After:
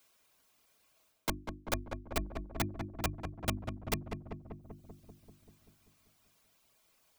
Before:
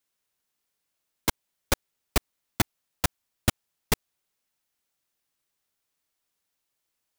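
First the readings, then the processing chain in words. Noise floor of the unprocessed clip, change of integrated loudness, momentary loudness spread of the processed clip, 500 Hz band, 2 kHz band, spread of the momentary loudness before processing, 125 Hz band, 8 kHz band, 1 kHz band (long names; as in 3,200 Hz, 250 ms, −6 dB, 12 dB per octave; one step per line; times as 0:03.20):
−81 dBFS, −9.0 dB, 16 LU, −5.5 dB, −8.5 dB, 1 LU, −5.0 dB, −11.0 dB, −6.0 dB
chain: notch filter 1,800 Hz, Q 17
reverb reduction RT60 0.88 s
parametric band 11,000 Hz −2.5 dB 1.8 octaves
mains-hum notches 50/100/150/200/250/300/350 Hz
reversed playback
downward compressor 6 to 1, threshold −32 dBFS, peak gain reduction 14 dB
reversed playback
hollow resonant body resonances 650/1,100/2,400 Hz, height 8 dB, ringing for 70 ms
on a send: feedback echo with a low-pass in the loop 194 ms, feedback 62%, low-pass 1,300 Hz, level −6.5 dB
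on the sum: multiband upward and downward compressor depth 40%
level +1.5 dB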